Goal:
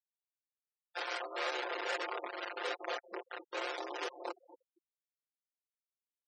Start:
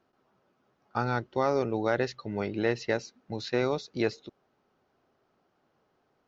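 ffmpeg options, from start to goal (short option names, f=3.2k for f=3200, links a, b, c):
-filter_complex "[0:a]aeval=exprs='val(0)*sin(2*PI*39*n/s)':c=same,acrusher=bits=4:mix=0:aa=0.000001,asuperstop=centerf=2400:order=8:qfactor=0.84,asplit=5[a][b][c][d][e];[b]adelay=233,afreqshift=-140,volume=-18dB[f];[c]adelay=466,afreqshift=-280,volume=-24.6dB[g];[d]adelay=699,afreqshift=-420,volume=-31.1dB[h];[e]adelay=932,afreqshift=-560,volume=-37.7dB[i];[a][f][g][h][i]amix=inputs=5:normalize=0,volume=27dB,asoftclip=hard,volume=-27dB,alimiter=level_in=10.5dB:limit=-24dB:level=0:latency=1:release=12,volume=-10.5dB,asettb=1/sr,asplit=3[j][k][l];[j]atrim=end=1.404[m];[k]atrim=start=1.4:end=3.67,asetpts=PTS-STARTPTS,afade=t=in:d=0.004:c=qsin,afade=t=out:st=2.266:d=0.004:c=qsin,highshelf=f=4.7k:g=-8.5[n];[l]atrim=start=3.666[o];[m][n]acrossfade=d=0.004:c1=hsin:c2=qsin[p];[p][o]acrossfade=d=0.004:c1=qsin:c2=hsin,aeval=exprs='(mod(79.4*val(0)+1,2)-1)/79.4':c=same,highpass=f=420:w=0.5412,highpass=f=420:w=1.3066,aemphasis=mode=reproduction:type=50fm,aecho=1:1:5.7:0.8,afftfilt=real='re*gte(hypot(re,im),0.00282)':imag='im*gte(hypot(re,im),0.00282)':win_size=1024:overlap=0.75,volume=10dB"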